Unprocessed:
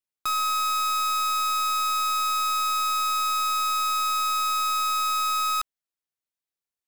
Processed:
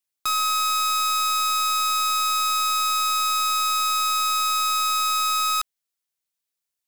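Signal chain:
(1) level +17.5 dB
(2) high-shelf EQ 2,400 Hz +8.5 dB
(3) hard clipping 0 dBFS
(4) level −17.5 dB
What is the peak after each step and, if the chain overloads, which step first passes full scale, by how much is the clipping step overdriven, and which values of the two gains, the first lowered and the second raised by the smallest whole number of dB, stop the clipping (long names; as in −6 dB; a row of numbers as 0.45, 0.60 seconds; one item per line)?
−7.0, +4.0, 0.0, −17.5 dBFS
step 2, 4.0 dB
step 1 +13.5 dB, step 4 −13.5 dB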